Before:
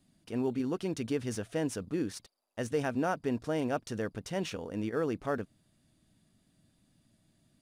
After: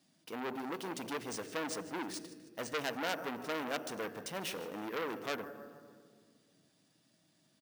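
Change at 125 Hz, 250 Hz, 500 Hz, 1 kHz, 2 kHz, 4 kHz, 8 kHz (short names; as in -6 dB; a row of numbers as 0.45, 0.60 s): -14.5, -9.0, -6.5, -1.0, +1.0, +3.0, +0.5 dB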